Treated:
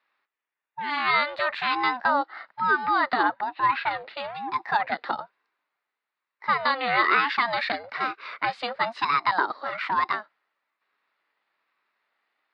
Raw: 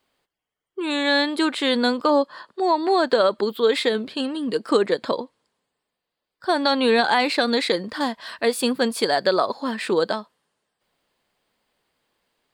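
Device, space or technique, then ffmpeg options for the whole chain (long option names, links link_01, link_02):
voice changer toy: -filter_complex "[0:a]asettb=1/sr,asplit=3[link_01][link_02][link_03];[link_01]atrim=end=3.234[link_04];[link_02]atrim=start=3.23:end=3.91,asetpts=PTS-STARTPTS,afade=type=in:duration=0.004:curve=qsin,afade=type=out:start_time=0.676:duration=0.004:curve=qsin,lowpass=2700[link_05];[link_03]atrim=start=3.906[link_06];[link_04][link_05]acrossfade=duration=0.004:curve1=hsin:curve2=qsin[link_07];[link_07][link_06]acrossfade=duration=0.004:curve1=qsin:curve2=hsin,aeval=exprs='val(0)*sin(2*PI*410*n/s+410*0.4/1.1*sin(2*PI*1.1*n/s))':channel_layout=same,highpass=510,equalizer=frequency=510:width_type=q:width=4:gain=-5,equalizer=frequency=730:width_type=q:width=4:gain=-4,equalizer=frequency=1200:width_type=q:width=4:gain=3,equalizer=frequency=1900:width_type=q:width=4:gain=6,equalizer=frequency=3200:width_type=q:width=4:gain=-7,lowpass=frequency=3700:width=0.5412,lowpass=frequency=3700:width=1.3066,volume=1.5dB"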